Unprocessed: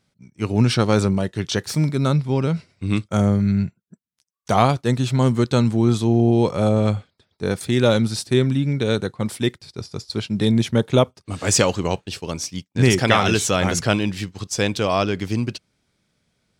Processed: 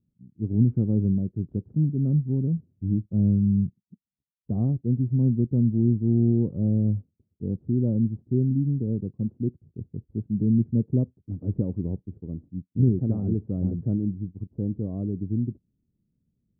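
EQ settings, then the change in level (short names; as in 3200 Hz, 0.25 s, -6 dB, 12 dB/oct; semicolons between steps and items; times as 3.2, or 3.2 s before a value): ladder low-pass 350 Hz, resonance 25%; low shelf 110 Hz +5 dB; 0.0 dB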